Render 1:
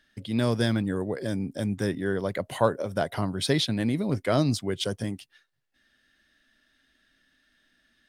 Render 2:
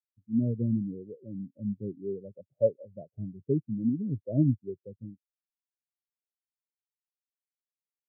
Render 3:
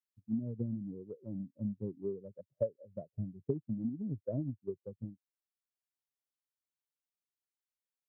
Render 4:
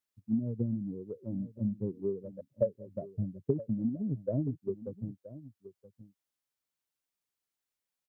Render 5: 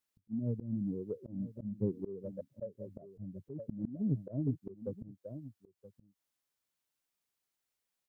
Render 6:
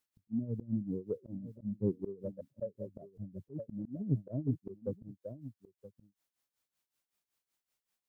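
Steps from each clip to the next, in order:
inverse Chebyshev low-pass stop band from 1200 Hz, stop band 40 dB; spectral expander 2.5:1
compressor 6:1, threshold -31 dBFS, peak gain reduction 12.5 dB; transient shaper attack +6 dB, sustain -2 dB; gain -4 dB
echo 0.974 s -16 dB; gain +4.5 dB
auto swell 0.221 s; gain +2 dB
tremolo 5.3 Hz, depth 80%; gain +3.5 dB

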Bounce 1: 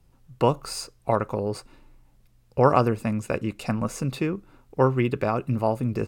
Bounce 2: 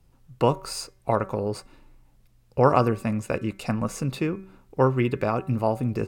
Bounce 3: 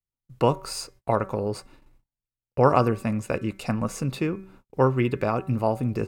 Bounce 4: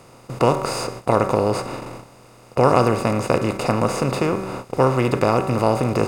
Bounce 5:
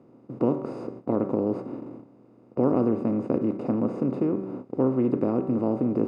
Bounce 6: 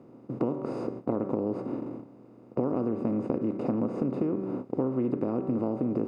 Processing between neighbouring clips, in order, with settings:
de-hum 190.6 Hz, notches 13
gate -50 dBFS, range -36 dB
per-bin compression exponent 0.4
band-pass 270 Hz, Q 2.5; gain +2 dB
compressor, threshold -27 dBFS, peak gain reduction 10 dB; gain +2.5 dB

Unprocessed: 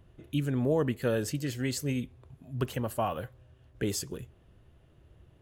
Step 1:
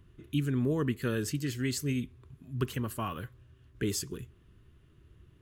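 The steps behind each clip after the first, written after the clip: band shelf 660 Hz -11.5 dB 1 oct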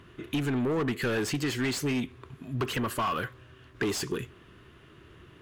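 overdrive pedal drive 25 dB, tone 2400 Hz, clips at -16.5 dBFS; compressor 2.5:1, threshold -27 dBFS, peak gain reduction 4 dB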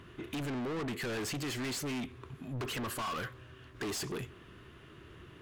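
soft clip -34.5 dBFS, distortion -9 dB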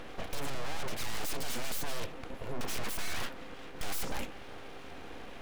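buzz 400 Hz, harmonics 6, -54 dBFS -8 dB/oct; full-wave rectifier; gain +7 dB

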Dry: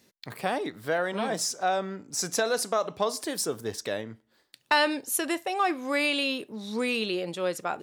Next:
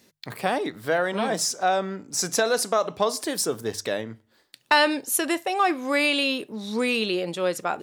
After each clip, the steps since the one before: notches 50/100/150 Hz; gain +4 dB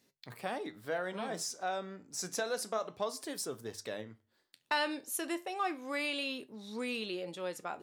flange 0.3 Hz, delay 7 ms, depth 6 ms, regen +74%; gain -8.5 dB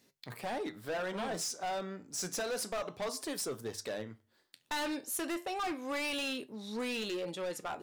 overloaded stage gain 36 dB; gain +3.5 dB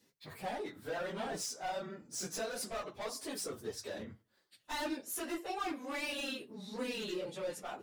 phase scrambler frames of 50 ms; gain -3 dB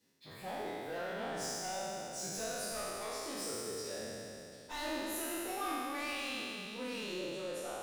spectral trails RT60 2.97 s; gain -6 dB

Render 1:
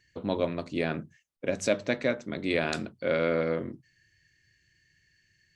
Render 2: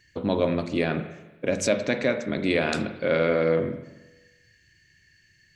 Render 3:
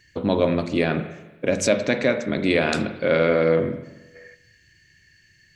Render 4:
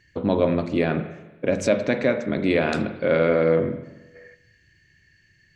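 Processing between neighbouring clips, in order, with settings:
in parallel at +1 dB: limiter -23 dBFS, peak gain reduction 11 dB; on the sum: spring tank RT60 1.1 s, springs 43/47 ms, chirp 35 ms, DRR 9 dB
spectral gain 4.15–4.35, 360–2500 Hz +10 dB; gain +3.5 dB
high shelf 3200 Hz -10 dB

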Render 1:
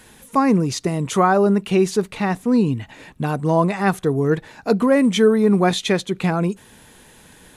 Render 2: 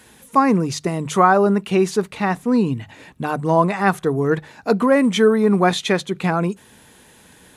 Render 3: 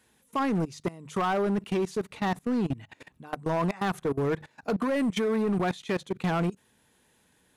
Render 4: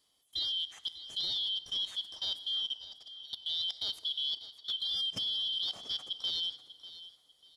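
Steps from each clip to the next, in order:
HPF 49 Hz; notches 50/100/150 Hz; dynamic EQ 1200 Hz, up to +5 dB, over -30 dBFS, Q 0.73; gain -1 dB
level quantiser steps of 21 dB; hard clip -19.5 dBFS, distortion -13 dB; gain -3 dB
four-band scrambler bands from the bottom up 3412; feedback echo 0.594 s, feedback 26%, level -15 dB; FDN reverb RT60 2.1 s, low-frequency decay 0.85×, high-frequency decay 0.65×, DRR 13 dB; gain -8 dB

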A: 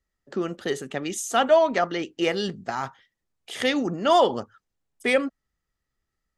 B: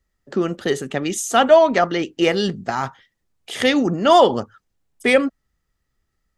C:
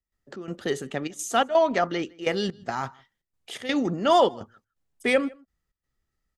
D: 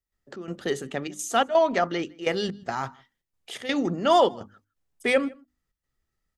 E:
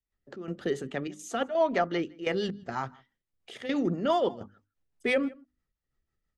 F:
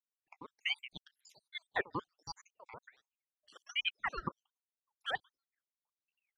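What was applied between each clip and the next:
low shelf 240 Hz +4 dB; gain +5.5 dB
step gate ".xx.xxxxx" 126 bpm -12 dB; outdoor echo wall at 27 m, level -26 dB; gain -6.5 dB
notches 50/100/150/200/250/300 Hz
LPF 3100 Hz 6 dB/oct; limiter -14.5 dBFS, peak gain reduction 5 dB; rotary speaker horn 6 Hz
random spectral dropouts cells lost 80%; transient shaper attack +4 dB, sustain -4 dB; ring modulator with a swept carrier 1700 Hz, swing 65%, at 1.3 Hz; gain -6 dB

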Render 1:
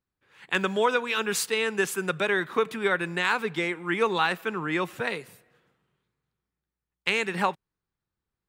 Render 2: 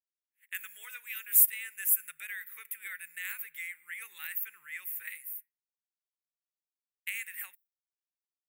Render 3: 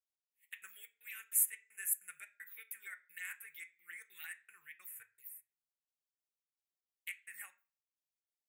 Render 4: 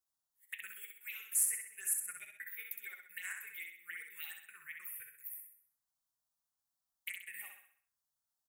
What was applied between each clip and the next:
differentiator; expander -53 dBFS; EQ curve 100 Hz 0 dB, 220 Hz -29 dB, 1000 Hz -24 dB, 2000 Hz +1 dB, 4600 Hz -25 dB, 14000 Hz +14 dB; gain +3 dB
envelope phaser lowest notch 220 Hz, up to 4300 Hz, full sweep at -37 dBFS; step gate "xx..xxx.x" 194 bpm -60 dB; on a send at -5 dB: reverb RT60 0.40 s, pre-delay 3 ms; on the sum: gain -3.5 dB
soft clip -27 dBFS, distortion -12 dB; envelope phaser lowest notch 410 Hz, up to 3700 Hz, full sweep at -40.5 dBFS; on a send: feedback echo 64 ms, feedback 46%, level -5 dB; on the sum: gain +5.5 dB

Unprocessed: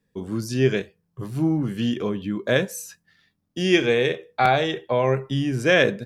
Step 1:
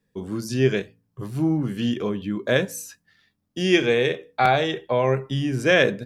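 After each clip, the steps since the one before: de-hum 55.67 Hz, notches 5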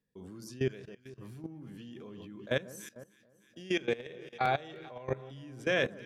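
echo with dull and thin repeats by turns 0.152 s, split 1400 Hz, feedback 73%, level -13 dB; level quantiser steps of 19 dB; gain -8.5 dB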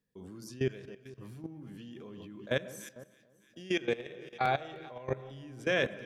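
reverb RT60 0.95 s, pre-delay 55 ms, DRR 18.5 dB

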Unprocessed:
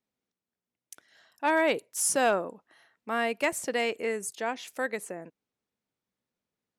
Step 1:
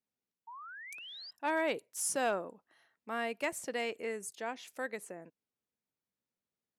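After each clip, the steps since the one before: painted sound rise, 0.47–1.31, 890–5100 Hz -40 dBFS; gain -7.5 dB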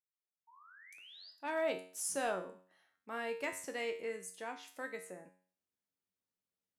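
opening faded in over 1.77 s; resonator 92 Hz, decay 0.47 s, harmonics all, mix 80%; gain +5 dB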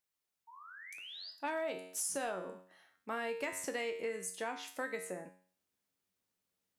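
compressor 12:1, threshold -41 dBFS, peak gain reduction 11.5 dB; gain +7 dB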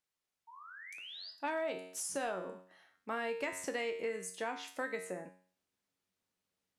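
high shelf 11000 Hz -11.5 dB; gain +1 dB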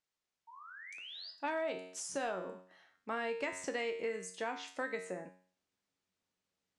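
LPF 8300 Hz 24 dB/oct

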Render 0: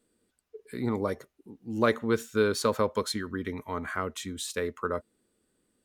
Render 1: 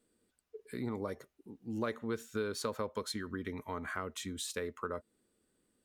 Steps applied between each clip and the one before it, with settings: compressor 2.5:1, threshold -33 dBFS, peak gain reduction 10 dB; gain -3 dB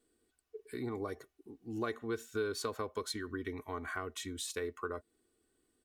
comb 2.7 ms, depth 58%; gain -1.5 dB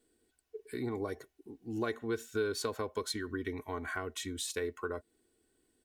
notch 1200 Hz, Q 7.9; gain +2.5 dB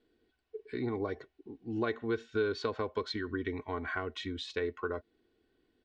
LPF 4200 Hz 24 dB/oct; gain +2 dB

